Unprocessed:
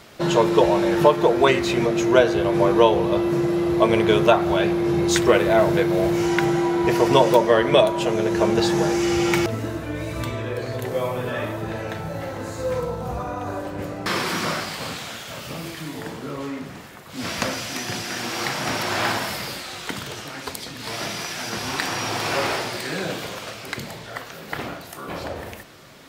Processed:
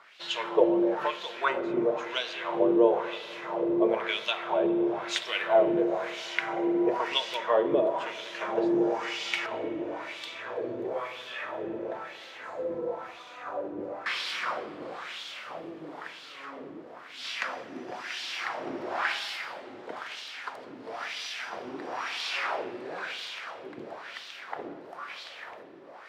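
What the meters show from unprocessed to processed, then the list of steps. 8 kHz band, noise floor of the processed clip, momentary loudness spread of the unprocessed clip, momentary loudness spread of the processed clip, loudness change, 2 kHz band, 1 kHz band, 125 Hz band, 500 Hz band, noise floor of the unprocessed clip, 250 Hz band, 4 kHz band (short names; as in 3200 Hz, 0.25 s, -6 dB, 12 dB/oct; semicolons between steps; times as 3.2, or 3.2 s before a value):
-16.0 dB, -46 dBFS, 16 LU, 17 LU, -8.5 dB, -6.5 dB, -8.5 dB, -23.5 dB, -8.5 dB, -39 dBFS, -9.5 dB, -6.0 dB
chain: low shelf 260 Hz -6.5 dB; on a send: diffused feedback echo 0.847 s, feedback 72%, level -12.5 dB; on the sum: LFO band-pass sine 1 Hz 320–3600 Hz; spring tank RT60 1.7 s, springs 40/57 ms, chirp 55 ms, DRR 13.5 dB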